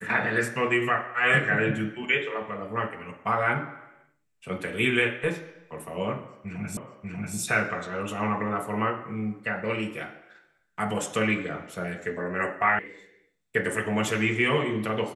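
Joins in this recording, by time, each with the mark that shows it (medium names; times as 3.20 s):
6.77 s: repeat of the last 0.59 s
12.79 s: sound stops dead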